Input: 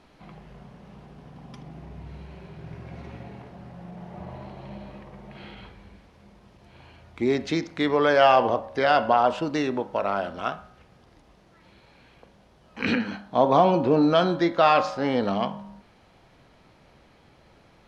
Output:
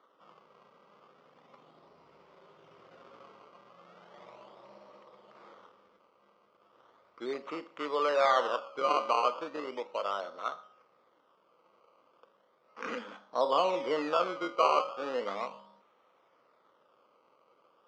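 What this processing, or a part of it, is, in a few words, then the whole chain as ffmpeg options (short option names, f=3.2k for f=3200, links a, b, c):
circuit-bent sampling toy: -af "acrusher=samples=17:mix=1:aa=0.000001:lfo=1:lforange=17:lforate=0.36,highpass=510,equalizer=f=510:t=q:w=4:g=6,equalizer=f=740:t=q:w=4:g=-6,equalizer=f=1.2k:t=q:w=4:g=9,equalizer=f=1.7k:t=q:w=4:g=-8,equalizer=f=2.5k:t=q:w=4:g=-5,equalizer=f=4k:t=q:w=4:g=-8,lowpass=f=4.3k:w=0.5412,lowpass=f=4.3k:w=1.3066,volume=-7.5dB"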